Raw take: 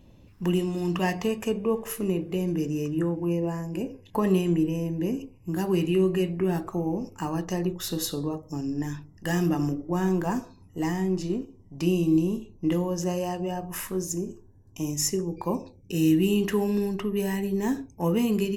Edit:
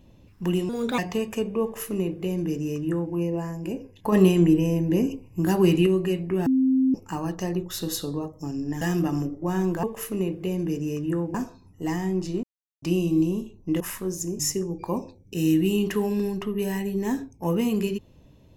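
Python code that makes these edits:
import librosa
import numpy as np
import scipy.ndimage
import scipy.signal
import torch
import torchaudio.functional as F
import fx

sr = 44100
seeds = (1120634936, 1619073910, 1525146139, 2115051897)

y = fx.edit(x, sr, fx.speed_span(start_s=0.69, length_s=0.39, speed=1.33),
    fx.duplicate(start_s=1.72, length_s=1.51, to_s=10.3),
    fx.clip_gain(start_s=4.22, length_s=1.74, db=5.5),
    fx.bleep(start_s=6.56, length_s=0.48, hz=262.0, db=-17.0),
    fx.cut(start_s=8.91, length_s=0.37),
    fx.silence(start_s=11.39, length_s=0.39),
    fx.cut(start_s=12.76, length_s=0.94),
    fx.cut(start_s=14.29, length_s=0.68), tone=tone)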